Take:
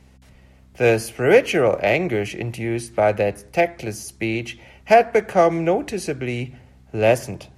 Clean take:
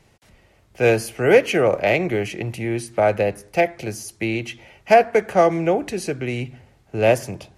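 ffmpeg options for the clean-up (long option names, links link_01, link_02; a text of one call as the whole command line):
ffmpeg -i in.wav -af "bandreject=frequency=64.5:width_type=h:width=4,bandreject=frequency=129:width_type=h:width=4,bandreject=frequency=193.5:width_type=h:width=4,bandreject=frequency=258:width_type=h:width=4" out.wav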